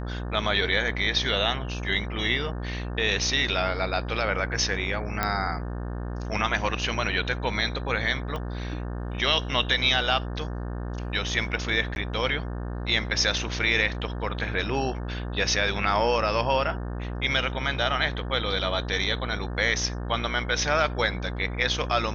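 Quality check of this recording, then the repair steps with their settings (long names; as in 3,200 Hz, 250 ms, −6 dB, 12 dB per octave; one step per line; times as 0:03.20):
mains buzz 60 Hz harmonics 30 −32 dBFS
0:05.23: click −10 dBFS
0:08.36: click −20 dBFS
0:11.95–0:11.96: drop-out 11 ms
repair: click removal
hum removal 60 Hz, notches 30
repair the gap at 0:11.95, 11 ms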